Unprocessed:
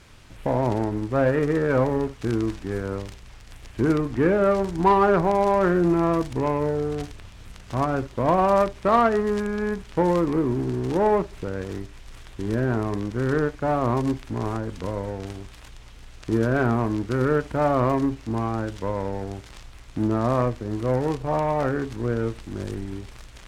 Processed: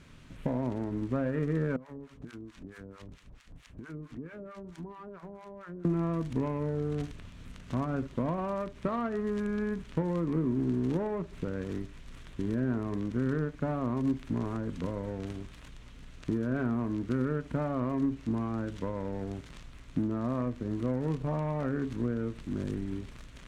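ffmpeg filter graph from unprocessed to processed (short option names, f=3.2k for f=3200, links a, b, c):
-filter_complex "[0:a]asettb=1/sr,asplit=3[a][b][c];[a]atrim=end=1.764[d];[b]atrim=start=1.76:end=5.85,asetpts=PTS-STARTPTS,afade=t=in:d=0.004:c=qsin,afade=t=out:st=4.086:d=0.004:c=qsin,acrossover=split=830[e][f];[e]aeval=exprs='val(0)*(1-1/2+1/2*cos(2*PI*4.5*n/s))':c=same[g];[f]aeval=exprs='val(0)*(1-1/2-1/2*cos(2*PI*4.5*n/s))':c=same[h];[g][h]amix=inputs=2:normalize=0,acompressor=threshold=-38dB:ratio=8:attack=3.2:release=140:knee=1:detection=peak,aecho=1:1:192:0.0891,atrim=end_sample=180369[i];[c]atrim=start=5.846[j];[d][i]acrossfade=d=0.004:c1=hsin:c2=qsin[k];[k][j]acrossfade=d=0.004:c1=qsin:c2=hsin,highshelf=f=9.1k:g=-8.5,acompressor=threshold=-25dB:ratio=6,equalizer=f=160:t=o:w=0.33:g=10,equalizer=f=250:t=o:w=0.33:g=9,equalizer=f=800:t=o:w=0.33:g=-6,equalizer=f=5k:t=o:w=0.33:g=-4,volume=-5dB"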